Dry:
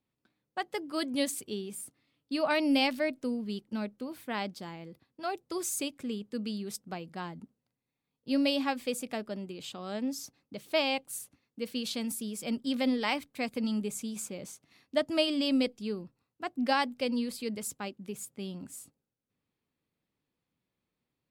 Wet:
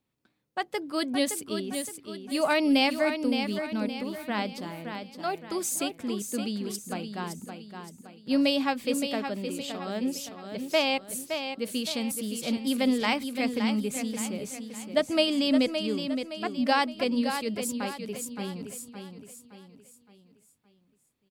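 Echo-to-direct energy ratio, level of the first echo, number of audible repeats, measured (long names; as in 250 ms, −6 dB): −6.5 dB, −7.5 dB, 4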